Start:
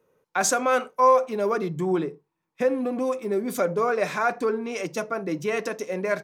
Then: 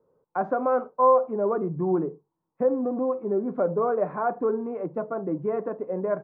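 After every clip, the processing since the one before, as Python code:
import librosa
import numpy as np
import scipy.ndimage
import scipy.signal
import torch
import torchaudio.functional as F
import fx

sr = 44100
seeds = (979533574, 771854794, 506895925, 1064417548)

y = scipy.signal.sosfilt(scipy.signal.butter(4, 1100.0, 'lowpass', fs=sr, output='sos'), x)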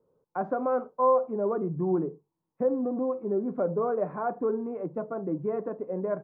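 y = fx.low_shelf(x, sr, hz=500.0, db=5.5)
y = F.gain(torch.from_numpy(y), -6.0).numpy()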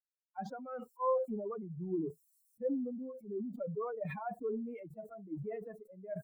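y = fx.bin_expand(x, sr, power=3.0)
y = fx.sustainer(y, sr, db_per_s=38.0)
y = F.gain(torch.from_numpy(y), -7.0).numpy()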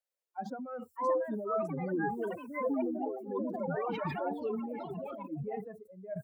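y = fx.filter_sweep_highpass(x, sr, from_hz=540.0, to_hz=81.0, start_s=0.21, end_s=0.9, q=4.6)
y = fx.echo_pitch(y, sr, ms=681, semitones=4, count=3, db_per_echo=-3.0)
y = F.gain(torch.from_numpy(y), 1.0).numpy()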